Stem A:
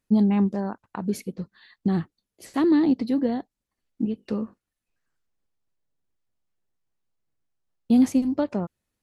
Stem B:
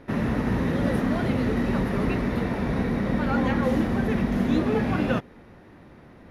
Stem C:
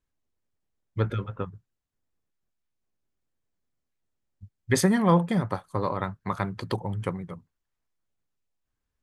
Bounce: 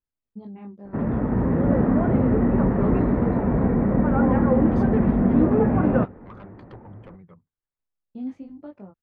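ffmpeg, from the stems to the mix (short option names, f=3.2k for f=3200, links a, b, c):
-filter_complex "[0:a]flanger=delay=20:depth=5:speed=0.71,adelay=250,volume=-13dB[a];[1:a]lowpass=1.1k,dynaudnorm=f=110:g=11:m=4dB,adelay=850,volume=1dB[b];[2:a]asoftclip=type=tanh:threshold=-27dB,volume=-10dB,asplit=2[c][d];[d]apad=whole_len=409016[e];[a][e]sidechaincompress=threshold=-57dB:ratio=8:attack=16:release=257[f];[f][b][c]amix=inputs=3:normalize=0,lowpass=2.3k"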